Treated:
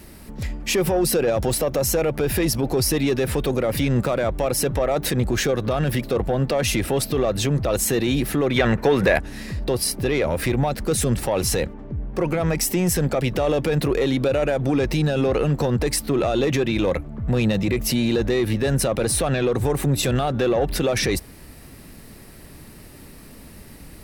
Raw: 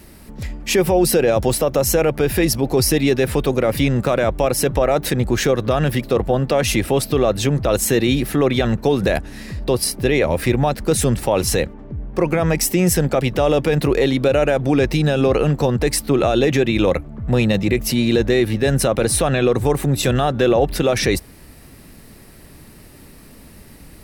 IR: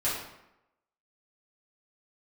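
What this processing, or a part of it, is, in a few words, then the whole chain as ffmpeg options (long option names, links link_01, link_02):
soft clipper into limiter: -filter_complex "[0:a]asoftclip=type=tanh:threshold=-8.5dB,alimiter=limit=-13.5dB:level=0:latency=1,asettb=1/sr,asplit=3[link_01][link_02][link_03];[link_01]atrim=end=8.564[link_04];[link_02]atrim=start=8.56:end=9.2,asetpts=PTS-STARTPTS,afade=type=in:duration=0.004:curve=qsin,afade=type=out:start_time=0.636:duration=0.004:curve=qsin,equalizer=frequency=500:width_type=o:width=1:gain=4,equalizer=frequency=1000:width_type=o:width=1:gain=4,equalizer=frequency=2000:width_type=o:width=1:gain=10[link_05];[link_03]atrim=start=9.196[link_06];[link_04][link_05]acrossfade=duration=0.004:curve1=hsin:curve2=qsin[link_07];[link_07][link_06]acrossfade=duration=0.004:curve1=qsin:curve2=hsin"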